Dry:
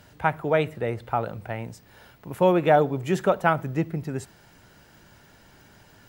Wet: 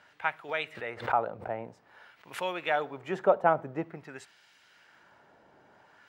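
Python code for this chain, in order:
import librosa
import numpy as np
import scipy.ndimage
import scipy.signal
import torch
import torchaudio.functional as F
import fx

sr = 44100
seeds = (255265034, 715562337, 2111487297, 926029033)

y = fx.filter_lfo_bandpass(x, sr, shape='sine', hz=0.5, low_hz=610.0, high_hz=3100.0, q=0.98)
y = fx.pre_swell(y, sr, db_per_s=140.0, at=(0.48, 2.53), fade=0.02)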